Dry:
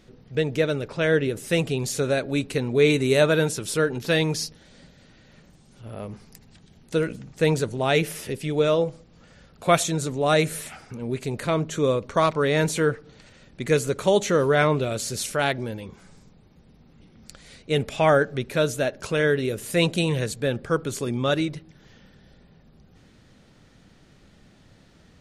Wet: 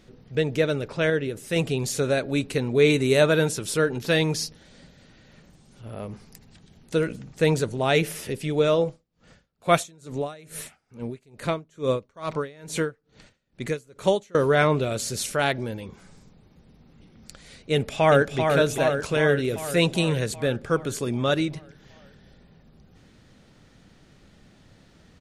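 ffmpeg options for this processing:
-filter_complex "[0:a]asettb=1/sr,asplit=3[s0][s1][s2];[s0]atrim=end=8.874[s3];[s1]atrim=start=8.87:end=14.35,asetpts=PTS-STARTPTS,afade=t=in:d=0.004:c=qsin,afade=t=out:st=5.476:d=0.004:c=qsin,aeval=exprs='val(0)*pow(10,-28*(0.5-0.5*cos(2*PI*2.3*n/s))/20)':c=same[s4];[s2]atrim=start=14.346[s5];[s3][s4]acrossfade=d=0.004:c1=hsin:c2=qsin[s6];[s6][s5]acrossfade=d=0.004:c1=qsin:c2=hsin,asplit=2[s7][s8];[s8]afade=t=in:st=17.72:d=0.01,afade=t=out:st=18.39:d=0.01,aecho=0:1:390|780|1170|1560|1950|2340|2730|3120|3510|3900:0.562341|0.365522|0.237589|0.154433|0.100381|0.0652479|0.0424112|0.0275673|0.0179187|0.0116472[s9];[s7][s9]amix=inputs=2:normalize=0,asplit=3[s10][s11][s12];[s10]atrim=end=1.102[s13];[s11]atrim=start=1.098:end=1.562,asetpts=PTS-STARTPTS,volume=0.631[s14];[s12]atrim=start=1.558[s15];[s13][s14]acrossfade=d=0.004:c1=hsin:c2=hsin[s16];[s16][s15]acrossfade=d=0.004:c1=hsin:c2=hsin"

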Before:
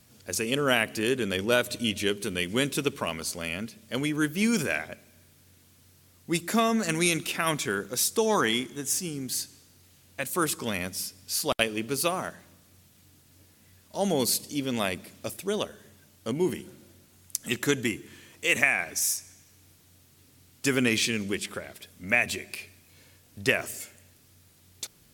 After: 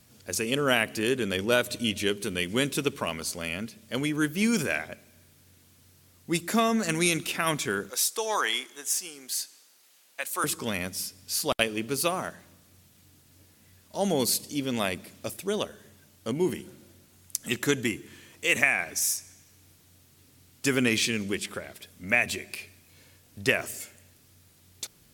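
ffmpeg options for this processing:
-filter_complex "[0:a]asettb=1/sr,asplit=3[s0][s1][s2];[s0]atrim=end=7.904[s3];[s1]atrim=start=7.9:end=10.44,asetpts=PTS-STARTPTS,afade=t=in:d=0.004:c=qsin,afade=t=out:st=2.536:d=0.004:c=qsin,highpass=650[s4];[s2]atrim=start=10.436[s5];[s3][s4]acrossfade=d=0.004:c1=hsin:c2=qsin[s6];[s6][s5]acrossfade=d=0.004:c1=qsin:c2=hsin"

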